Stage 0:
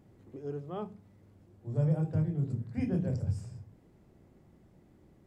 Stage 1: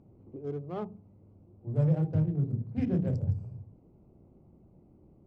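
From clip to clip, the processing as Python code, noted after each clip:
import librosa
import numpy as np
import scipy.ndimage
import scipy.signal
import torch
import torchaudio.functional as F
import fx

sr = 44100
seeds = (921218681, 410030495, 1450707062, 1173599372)

y = fx.wiener(x, sr, points=25)
y = fx.air_absorb(y, sr, metres=60.0)
y = y * 10.0 ** (2.5 / 20.0)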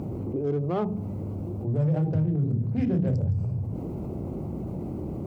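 y = scipy.signal.sosfilt(scipy.signal.butter(2, 55.0, 'highpass', fs=sr, output='sos'), x)
y = fx.env_flatten(y, sr, amount_pct=70)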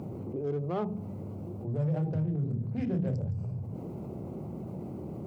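y = scipy.signal.sosfilt(scipy.signal.butter(2, 110.0, 'highpass', fs=sr, output='sos'), x)
y = fx.peak_eq(y, sr, hz=290.0, db=-4.0, octaves=0.51)
y = y * 10.0 ** (-4.0 / 20.0)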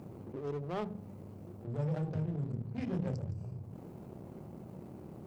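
y = fx.power_curve(x, sr, exponent=1.4)
y = fx.high_shelf(y, sr, hz=2200.0, db=7.5)
y = y * 10.0 ** (-3.0 / 20.0)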